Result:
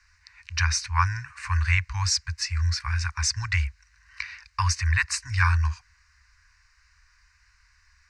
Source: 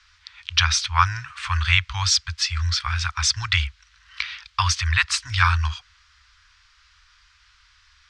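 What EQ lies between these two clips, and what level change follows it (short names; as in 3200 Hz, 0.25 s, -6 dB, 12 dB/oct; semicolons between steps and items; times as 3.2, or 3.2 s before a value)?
bell 1300 Hz -13.5 dB 0.24 oct; fixed phaser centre 1400 Hz, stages 4; 0.0 dB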